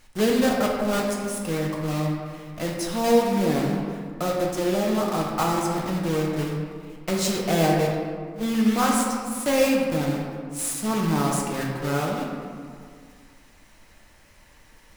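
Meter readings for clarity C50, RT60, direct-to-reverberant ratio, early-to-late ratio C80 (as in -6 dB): 1.5 dB, 2.0 s, -2.0 dB, 2.5 dB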